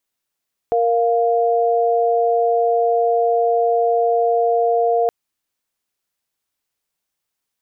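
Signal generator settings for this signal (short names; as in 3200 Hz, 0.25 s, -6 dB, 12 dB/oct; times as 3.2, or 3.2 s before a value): chord A#4/F5 sine, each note -16.5 dBFS 4.37 s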